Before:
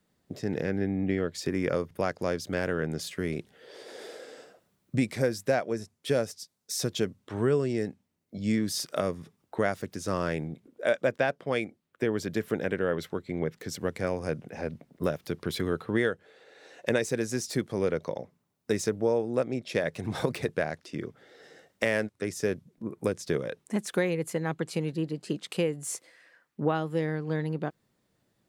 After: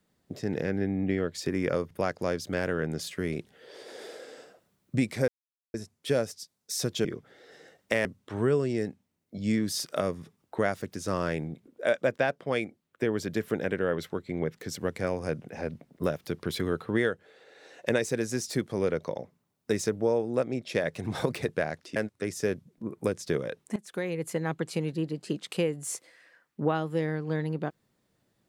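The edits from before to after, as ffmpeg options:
ffmpeg -i in.wav -filter_complex "[0:a]asplit=7[link_01][link_02][link_03][link_04][link_05][link_06][link_07];[link_01]atrim=end=5.28,asetpts=PTS-STARTPTS,afade=type=out:start_time=5.276:duration=0.004:curve=hsin[link_08];[link_02]atrim=start=5.28:end=5.74,asetpts=PTS-STARTPTS,volume=0[link_09];[link_03]atrim=start=5.74:end=7.052,asetpts=PTS-STARTPTS,afade=type=in:duration=0.004:curve=hsin[link_10];[link_04]atrim=start=20.958:end=21.962[link_11];[link_05]atrim=start=7.048:end=20.962[link_12];[link_06]atrim=start=21.958:end=23.76,asetpts=PTS-STARTPTS,afade=type=out:start_time=1.798:duration=0.004:curve=hsin:silence=0.125893[link_13];[link_07]atrim=start=23.76,asetpts=PTS-STARTPTS,afade=type=in:duration=0.57:silence=0.125893[link_14];[link_08][link_09][link_10]concat=n=3:v=0:a=1[link_15];[link_15][link_11]acrossfade=duration=0.004:curve1=hsin:curve2=hsin[link_16];[link_16][link_12]acrossfade=duration=0.004:curve1=hsin:curve2=hsin[link_17];[link_13][link_14]concat=n=2:v=0:a=1[link_18];[link_17][link_18]acrossfade=duration=0.004:curve1=hsin:curve2=hsin" out.wav

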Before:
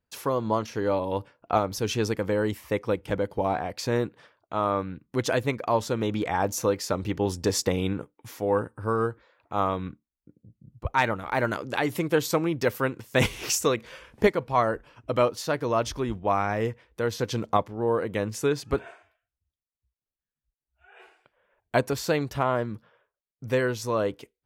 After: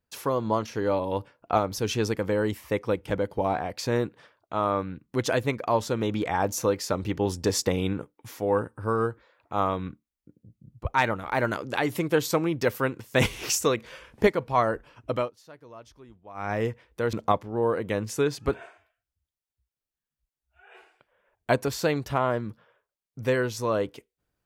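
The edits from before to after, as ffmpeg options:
ffmpeg -i in.wav -filter_complex "[0:a]asplit=4[link_01][link_02][link_03][link_04];[link_01]atrim=end=15.31,asetpts=PTS-STARTPTS,afade=type=out:start_time=15.11:duration=0.2:silence=0.0891251[link_05];[link_02]atrim=start=15.31:end=16.34,asetpts=PTS-STARTPTS,volume=-21dB[link_06];[link_03]atrim=start=16.34:end=17.132,asetpts=PTS-STARTPTS,afade=type=in:duration=0.2:silence=0.0891251[link_07];[link_04]atrim=start=17.378[link_08];[link_05][link_06][link_07]concat=n=3:v=0:a=1[link_09];[link_09][link_08]acrossfade=duration=0.004:curve1=hsin:curve2=hsin" out.wav

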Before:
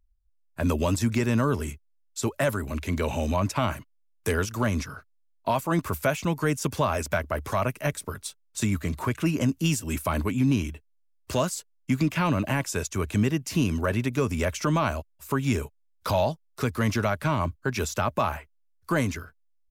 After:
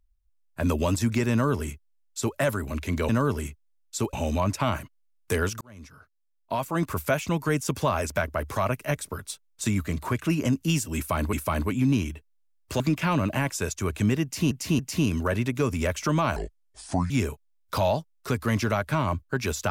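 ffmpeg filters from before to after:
ffmpeg -i in.wav -filter_complex "[0:a]asplit=10[link_01][link_02][link_03][link_04][link_05][link_06][link_07][link_08][link_09][link_10];[link_01]atrim=end=3.092[link_11];[link_02]atrim=start=1.318:end=2.362[link_12];[link_03]atrim=start=3.088:end=4.57,asetpts=PTS-STARTPTS,afade=type=out:start_time=1.478:duration=0.004:curve=hsin[link_13];[link_04]atrim=start=4.57:end=10.292,asetpts=PTS-STARTPTS,afade=type=in:duration=1.39[link_14];[link_05]atrim=start=9.918:end=11.392[link_15];[link_06]atrim=start=11.938:end=13.652[link_16];[link_07]atrim=start=13.368:end=13.652[link_17];[link_08]atrim=start=13.368:end=14.944[link_18];[link_09]atrim=start=14.94:end=15.43,asetpts=PTS-STARTPTS,asetrate=29106,aresample=44100[link_19];[link_10]atrim=start=15.426[link_20];[link_11][link_12]acrossfade=duration=0.004:curve1=hsin:curve2=hsin[link_21];[link_13][link_14]concat=n=2:v=0:a=1[link_22];[link_21][link_22]acrossfade=duration=0.004:curve1=hsin:curve2=hsin[link_23];[link_23][link_15]acrossfade=duration=0.004:curve1=hsin:curve2=hsin[link_24];[link_24][link_16]acrossfade=duration=0.004:curve1=hsin:curve2=hsin[link_25];[link_25][link_17]acrossfade=duration=0.004:curve1=hsin:curve2=hsin[link_26];[link_26][link_18]acrossfade=duration=0.004:curve1=hsin:curve2=hsin[link_27];[link_27][link_19]acrossfade=duration=0.004:curve1=hsin:curve2=hsin[link_28];[link_28][link_20]acrossfade=duration=0.004:curve1=hsin:curve2=hsin" out.wav

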